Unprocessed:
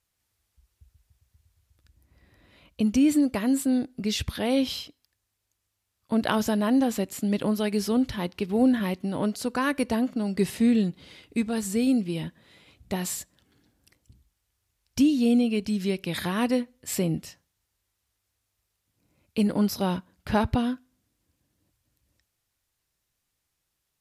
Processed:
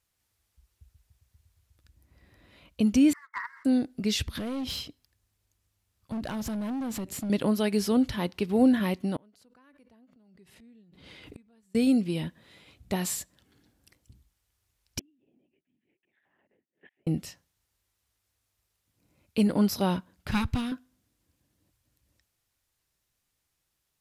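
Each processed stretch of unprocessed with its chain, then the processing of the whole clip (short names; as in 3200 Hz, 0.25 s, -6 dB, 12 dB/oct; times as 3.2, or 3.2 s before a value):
3.13–3.65 brick-wall FIR band-pass 890–2200 Hz + sample leveller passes 1
4.25–7.3 low shelf 280 Hz +9.5 dB + compressor, threshold -27 dBFS + hard clip -29.5 dBFS
9.16–11.75 tone controls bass +1 dB, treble -6 dB + flipped gate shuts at -31 dBFS, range -35 dB + backwards sustainer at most 45 dB/s
14.99–17.07 flipped gate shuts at -31 dBFS, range -41 dB + LPC vocoder at 8 kHz whisper + speaker cabinet 310–2800 Hz, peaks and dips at 470 Hz -7 dB, 1200 Hz -8 dB, 1800 Hz +8 dB
20.31–20.72 minimum comb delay 0.8 ms + bell 540 Hz -9.5 dB 2.5 oct + notch 420 Hz, Q 7.8
whole clip: dry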